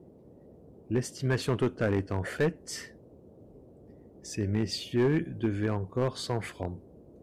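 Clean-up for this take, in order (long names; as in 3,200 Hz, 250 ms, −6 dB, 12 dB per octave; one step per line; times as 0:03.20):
clipped peaks rebuilt −19.5 dBFS
noise reduction from a noise print 21 dB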